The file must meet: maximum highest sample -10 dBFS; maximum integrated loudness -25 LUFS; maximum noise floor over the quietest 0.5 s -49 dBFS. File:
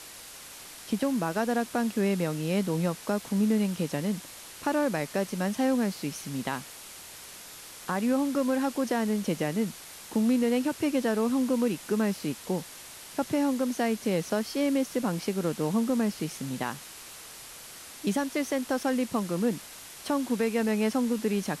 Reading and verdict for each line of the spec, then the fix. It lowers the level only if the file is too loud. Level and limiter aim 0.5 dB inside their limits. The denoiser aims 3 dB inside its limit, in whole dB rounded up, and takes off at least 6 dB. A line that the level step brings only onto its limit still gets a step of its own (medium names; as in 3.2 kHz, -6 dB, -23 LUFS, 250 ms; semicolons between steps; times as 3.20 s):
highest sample -16.0 dBFS: pass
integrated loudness -28.5 LUFS: pass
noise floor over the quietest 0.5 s -46 dBFS: fail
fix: noise reduction 6 dB, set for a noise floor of -46 dBFS